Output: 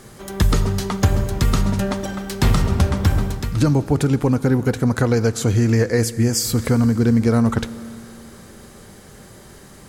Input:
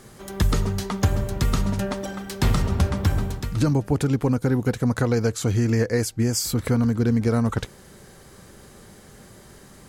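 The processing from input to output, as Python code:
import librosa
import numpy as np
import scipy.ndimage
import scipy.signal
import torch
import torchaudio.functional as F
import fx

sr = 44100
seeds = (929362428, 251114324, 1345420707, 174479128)

y = fx.rev_schroeder(x, sr, rt60_s=3.0, comb_ms=27, drr_db=15.0)
y = y * librosa.db_to_amplitude(4.0)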